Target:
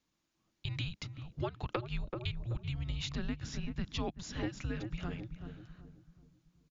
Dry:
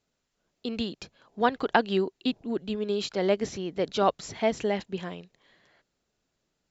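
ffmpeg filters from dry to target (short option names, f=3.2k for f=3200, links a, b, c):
-filter_complex "[0:a]asplit=2[a][b];[b]adelay=381,lowpass=f=890:p=1,volume=-9dB,asplit=2[c][d];[d]adelay=381,lowpass=f=890:p=1,volume=0.45,asplit=2[e][f];[f]adelay=381,lowpass=f=890:p=1,volume=0.45,asplit=2[g][h];[h]adelay=381,lowpass=f=890:p=1,volume=0.45,asplit=2[i][j];[j]adelay=381,lowpass=f=890:p=1,volume=0.45[k];[c][e][g][i][k]amix=inputs=5:normalize=0[l];[a][l]amix=inputs=2:normalize=0,afreqshift=-350,equalizer=f=86:t=o:w=0.73:g=-4,acompressor=threshold=-31dB:ratio=6,volume=-2dB"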